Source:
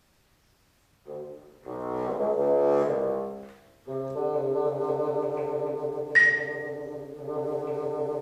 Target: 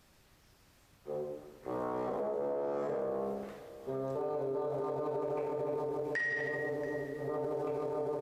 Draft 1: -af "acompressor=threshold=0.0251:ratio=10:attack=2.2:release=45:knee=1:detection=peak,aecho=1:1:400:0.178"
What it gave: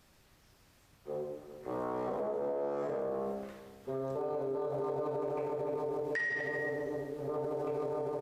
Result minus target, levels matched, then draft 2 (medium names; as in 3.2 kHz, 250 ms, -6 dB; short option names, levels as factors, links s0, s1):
echo 282 ms early
-af "acompressor=threshold=0.0251:ratio=10:attack=2.2:release=45:knee=1:detection=peak,aecho=1:1:682:0.178"